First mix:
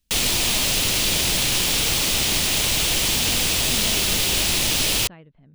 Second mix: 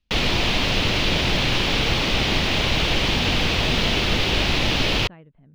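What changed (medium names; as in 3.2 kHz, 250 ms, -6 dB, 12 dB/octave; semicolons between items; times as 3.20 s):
background +6.0 dB; master: add distance through air 270 m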